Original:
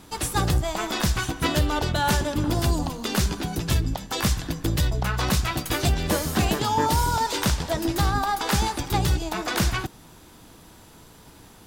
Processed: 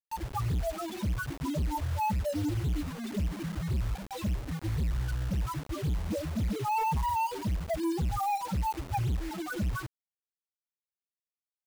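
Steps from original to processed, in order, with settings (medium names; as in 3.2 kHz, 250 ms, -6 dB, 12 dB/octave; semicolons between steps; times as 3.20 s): loudest bins only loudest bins 2; hard clipper -25.5 dBFS, distortion -10 dB; bit crusher 7-bit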